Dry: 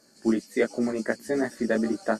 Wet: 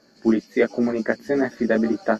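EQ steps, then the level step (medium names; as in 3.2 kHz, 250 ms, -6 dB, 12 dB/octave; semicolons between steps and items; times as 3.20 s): boxcar filter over 5 samples; +5.0 dB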